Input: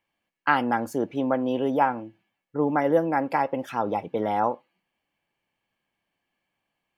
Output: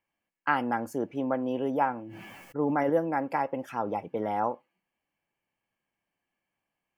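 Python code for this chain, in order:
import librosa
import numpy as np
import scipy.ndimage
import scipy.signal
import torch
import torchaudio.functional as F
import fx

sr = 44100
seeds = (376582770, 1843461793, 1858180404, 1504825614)

y = fx.peak_eq(x, sr, hz=3800.0, db=-10.0, octaves=0.41)
y = fx.sustainer(y, sr, db_per_s=21.0, at=(2.0, 2.9))
y = y * 10.0 ** (-4.5 / 20.0)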